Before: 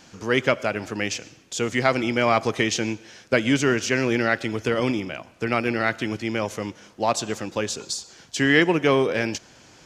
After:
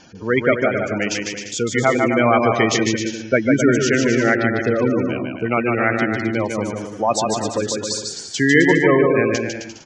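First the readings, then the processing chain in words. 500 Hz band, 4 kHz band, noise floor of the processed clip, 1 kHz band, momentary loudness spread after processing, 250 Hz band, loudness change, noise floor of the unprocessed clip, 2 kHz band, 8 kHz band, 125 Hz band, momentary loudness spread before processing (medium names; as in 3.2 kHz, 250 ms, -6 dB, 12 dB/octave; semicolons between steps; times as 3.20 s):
+6.0 dB, +1.5 dB, -35 dBFS, +5.0 dB, 10 LU, +6.0 dB, +5.0 dB, -52 dBFS, +4.5 dB, +5.0 dB, +5.5 dB, 11 LU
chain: spectral gate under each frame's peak -15 dB strong; bouncing-ball echo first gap 150 ms, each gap 0.75×, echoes 5; trim +4 dB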